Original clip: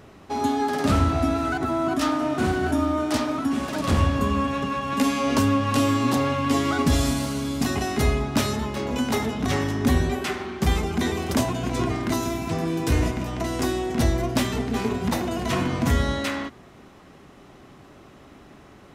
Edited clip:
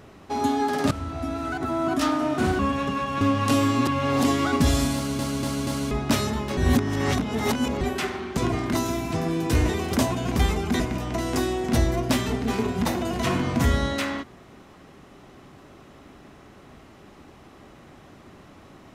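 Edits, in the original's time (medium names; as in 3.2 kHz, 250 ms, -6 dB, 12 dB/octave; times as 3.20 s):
0.91–1.95 s: fade in linear, from -16 dB
2.59–4.34 s: delete
4.96–5.47 s: delete
6.13–6.50 s: reverse
7.21 s: stutter in place 0.24 s, 4 plays
8.83–10.07 s: reverse
10.63–11.07 s: swap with 11.74–13.06 s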